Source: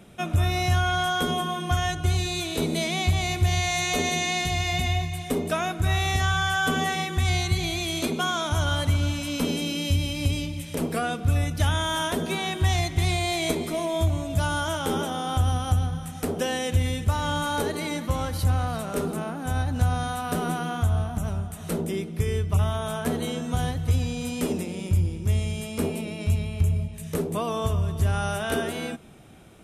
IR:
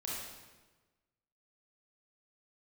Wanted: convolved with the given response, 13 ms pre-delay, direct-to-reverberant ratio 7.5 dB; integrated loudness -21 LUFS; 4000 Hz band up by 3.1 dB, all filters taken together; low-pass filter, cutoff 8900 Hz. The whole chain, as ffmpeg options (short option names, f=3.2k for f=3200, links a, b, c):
-filter_complex "[0:a]lowpass=8.9k,equalizer=f=4k:t=o:g=4,asplit=2[a][b];[1:a]atrim=start_sample=2205,adelay=13[c];[b][c]afir=irnorm=-1:irlink=0,volume=-9dB[d];[a][d]amix=inputs=2:normalize=0,volume=3.5dB"